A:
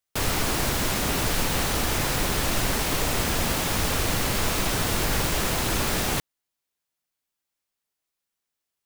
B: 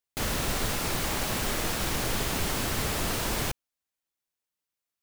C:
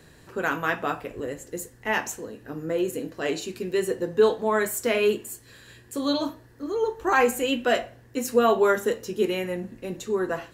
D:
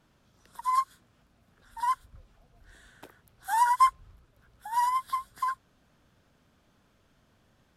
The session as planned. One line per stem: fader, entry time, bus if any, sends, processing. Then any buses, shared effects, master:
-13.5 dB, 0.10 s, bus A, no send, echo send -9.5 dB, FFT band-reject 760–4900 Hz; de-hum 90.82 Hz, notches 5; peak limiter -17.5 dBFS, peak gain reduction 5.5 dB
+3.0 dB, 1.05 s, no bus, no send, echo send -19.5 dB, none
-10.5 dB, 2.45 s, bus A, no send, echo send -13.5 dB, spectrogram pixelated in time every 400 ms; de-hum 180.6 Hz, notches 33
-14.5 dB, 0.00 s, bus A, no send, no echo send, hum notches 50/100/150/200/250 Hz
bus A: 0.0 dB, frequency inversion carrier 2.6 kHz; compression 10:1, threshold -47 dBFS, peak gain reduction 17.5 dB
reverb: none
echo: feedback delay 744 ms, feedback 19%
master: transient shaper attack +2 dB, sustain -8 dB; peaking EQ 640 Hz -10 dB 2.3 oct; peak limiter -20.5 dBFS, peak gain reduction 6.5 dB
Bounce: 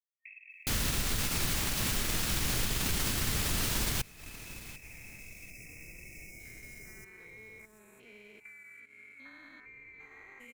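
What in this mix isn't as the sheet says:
stem B: entry 1.05 s -> 0.50 s; stem D: muted

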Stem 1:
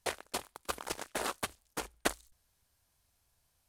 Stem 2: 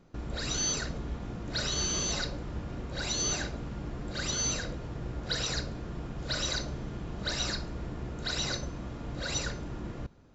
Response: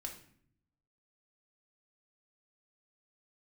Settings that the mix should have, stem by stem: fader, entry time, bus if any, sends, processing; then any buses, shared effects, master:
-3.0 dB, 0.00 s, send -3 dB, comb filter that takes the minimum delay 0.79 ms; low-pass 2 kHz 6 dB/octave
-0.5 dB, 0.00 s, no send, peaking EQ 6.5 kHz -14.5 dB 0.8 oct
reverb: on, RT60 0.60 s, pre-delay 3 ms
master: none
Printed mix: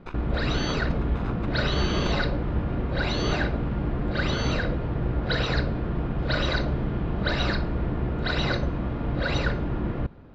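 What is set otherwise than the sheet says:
stem 2 -0.5 dB -> +11.0 dB; master: extra distance through air 190 m

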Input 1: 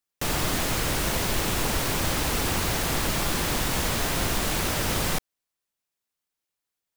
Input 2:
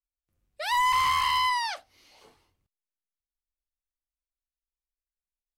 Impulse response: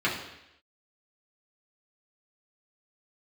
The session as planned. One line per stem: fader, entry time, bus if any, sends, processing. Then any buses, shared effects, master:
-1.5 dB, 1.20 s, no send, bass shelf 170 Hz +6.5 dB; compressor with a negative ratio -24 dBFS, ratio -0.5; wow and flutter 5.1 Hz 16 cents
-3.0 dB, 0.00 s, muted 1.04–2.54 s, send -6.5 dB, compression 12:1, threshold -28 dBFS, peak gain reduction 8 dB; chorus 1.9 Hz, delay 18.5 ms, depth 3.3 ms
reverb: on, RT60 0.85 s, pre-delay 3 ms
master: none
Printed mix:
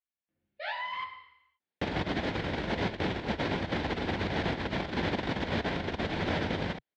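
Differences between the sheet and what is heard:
stem 1: entry 1.20 s -> 1.60 s; master: extra cabinet simulation 110–3400 Hz, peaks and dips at 130 Hz -9 dB, 1.2 kHz -10 dB, 2.7 kHz -6 dB

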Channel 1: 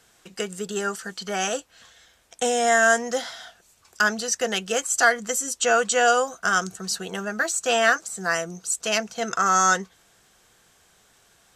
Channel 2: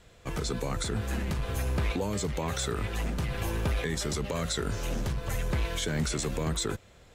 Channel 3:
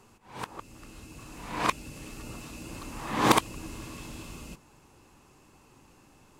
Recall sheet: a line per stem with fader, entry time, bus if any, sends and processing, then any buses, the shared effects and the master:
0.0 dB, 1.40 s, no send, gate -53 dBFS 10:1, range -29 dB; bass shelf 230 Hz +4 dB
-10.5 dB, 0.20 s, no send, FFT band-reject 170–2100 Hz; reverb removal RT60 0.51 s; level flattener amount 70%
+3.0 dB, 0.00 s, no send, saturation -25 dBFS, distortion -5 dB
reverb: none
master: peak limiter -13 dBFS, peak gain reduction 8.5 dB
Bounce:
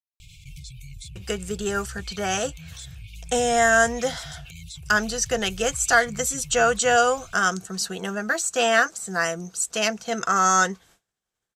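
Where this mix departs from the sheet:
stem 1: entry 1.40 s -> 0.90 s; stem 3: muted; master: missing peak limiter -13 dBFS, peak gain reduction 8.5 dB

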